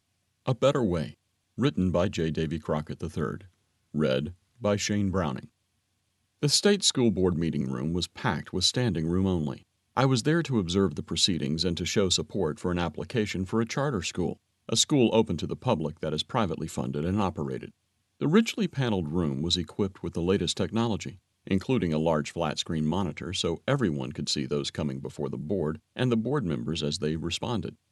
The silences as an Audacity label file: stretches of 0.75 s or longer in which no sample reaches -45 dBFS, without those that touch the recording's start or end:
5.450000	6.420000	silence